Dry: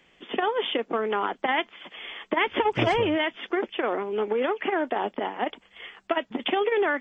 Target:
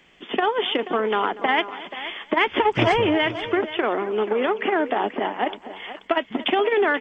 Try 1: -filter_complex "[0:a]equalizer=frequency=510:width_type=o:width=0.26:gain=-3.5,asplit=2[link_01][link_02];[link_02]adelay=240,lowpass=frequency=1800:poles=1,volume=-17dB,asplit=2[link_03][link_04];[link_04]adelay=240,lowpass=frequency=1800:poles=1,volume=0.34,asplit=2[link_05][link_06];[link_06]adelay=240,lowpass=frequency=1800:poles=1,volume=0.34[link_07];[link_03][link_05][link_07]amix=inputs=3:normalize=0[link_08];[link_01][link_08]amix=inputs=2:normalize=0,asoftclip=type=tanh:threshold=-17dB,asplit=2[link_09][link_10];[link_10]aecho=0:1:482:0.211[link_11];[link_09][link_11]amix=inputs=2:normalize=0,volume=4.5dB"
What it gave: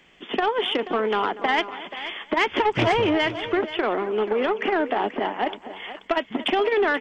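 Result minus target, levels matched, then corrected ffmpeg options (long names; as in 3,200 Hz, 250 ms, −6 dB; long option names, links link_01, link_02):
soft clipping: distortion +16 dB
-filter_complex "[0:a]equalizer=frequency=510:width_type=o:width=0.26:gain=-3.5,asplit=2[link_01][link_02];[link_02]adelay=240,lowpass=frequency=1800:poles=1,volume=-17dB,asplit=2[link_03][link_04];[link_04]adelay=240,lowpass=frequency=1800:poles=1,volume=0.34,asplit=2[link_05][link_06];[link_06]adelay=240,lowpass=frequency=1800:poles=1,volume=0.34[link_07];[link_03][link_05][link_07]amix=inputs=3:normalize=0[link_08];[link_01][link_08]amix=inputs=2:normalize=0,asoftclip=type=tanh:threshold=-7.5dB,asplit=2[link_09][link_10];[link_10]aecho=0:1:482:0.211[link_11];[link_09][link_11]amix=inputs=2:normalize=0,volume=4.5dB"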